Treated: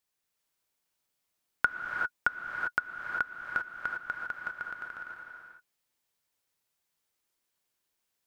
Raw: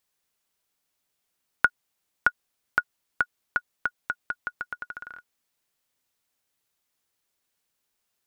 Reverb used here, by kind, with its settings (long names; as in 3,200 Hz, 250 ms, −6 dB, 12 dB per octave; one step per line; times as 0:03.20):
reverb whose tail is shaped and stops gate 420 ms rising, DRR 0.5 dB
level −5.5 dB